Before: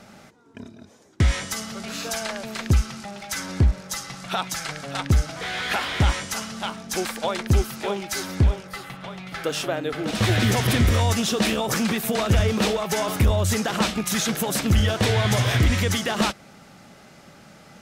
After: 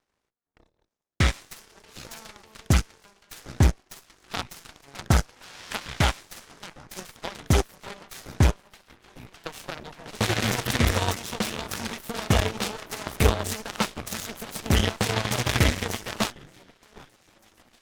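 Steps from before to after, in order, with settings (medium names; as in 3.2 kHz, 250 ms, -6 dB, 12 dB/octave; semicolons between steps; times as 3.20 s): echo whose repeats swap between lows and highs 756 ms, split 1.7 kHz, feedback 72%, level -12 dB; Chebyshev shaper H 3 -8 dB, 5 -28 dB, 8 -31 dB, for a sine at -9.5 dBFS; trim +4 dB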